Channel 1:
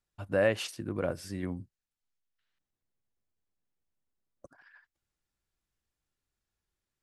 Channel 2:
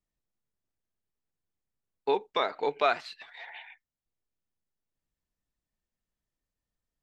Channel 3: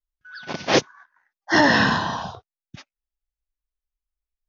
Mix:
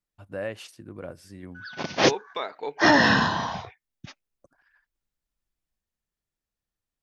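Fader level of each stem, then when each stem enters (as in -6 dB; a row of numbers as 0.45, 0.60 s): -6.5, -3.5, -1.5 dB; 0.00, 0.00, 1.30 s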